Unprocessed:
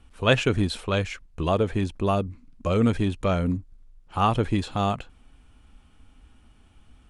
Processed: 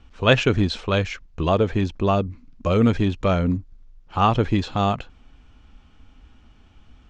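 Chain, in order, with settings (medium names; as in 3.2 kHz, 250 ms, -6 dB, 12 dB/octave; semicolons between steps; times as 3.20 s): steep low-pass 6.7 kHz 36 dB/octave; trim +3.5 dB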